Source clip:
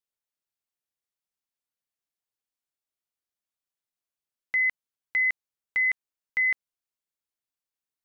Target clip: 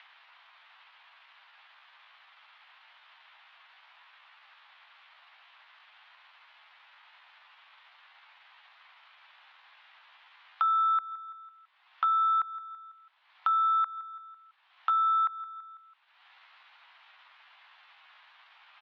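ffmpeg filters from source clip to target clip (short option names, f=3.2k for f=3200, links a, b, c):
-filter_complex "[0:a]aemphasis=mode=reproduction:type=cd,asetrate=18846,aresample=44100,acompressor=mode=upward:threshold=-30dB:ratio=2.5,asoftclip=type=tanh:threshold=-19dB,asplit=2[a][b];[b]aecho=0:1:166|332|498|664:0.0708|0.0418|0.0246|0.0145[c];[a][c]amix=inputs=2:normalize=0,highpass=f=490:t=q:w=0.5412,highpass=f=490:t=q:w=1.307,lowpass=f=2.7k:t=q:w=0.5176,lowpass=f=2.7k:t=q:w=0.7071,lowpass=f=2.7k:t=q:w=1.932,afreqshift=150,asetrate=57191,aresample=44100,atempo=0.771105,acompressor=threshold=-29dB:ratio=6,volume=5dB"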